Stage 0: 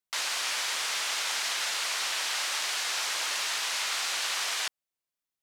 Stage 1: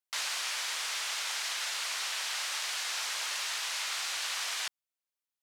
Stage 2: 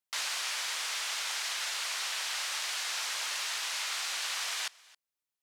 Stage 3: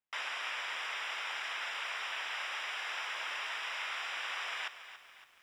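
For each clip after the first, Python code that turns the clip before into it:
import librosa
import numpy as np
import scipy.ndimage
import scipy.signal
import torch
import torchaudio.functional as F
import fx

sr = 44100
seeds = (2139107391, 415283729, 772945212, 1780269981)

y1 = fx.highpass(x, sr, hz=610.0, slope=6)
y1 = fx.rider(y1, sr, range_db=10, speed_s=0.5)
y1 = F.gain(torch.from_numpy(y1), -3.5).numpy()
y2 = y1 + 10.0 ** (-23.5 / 20.0) * np.pad(y1, (int(269 * sr / 1000.0), 0))[:len(y1)]
y3 = scipy.signal.savgol_filter(y2, 25, 4, mode='constant')
y3 = fx.echo_crushed(y3, sr, ms=281, feedback_pct=55, bits=10, wet_db=-12.5)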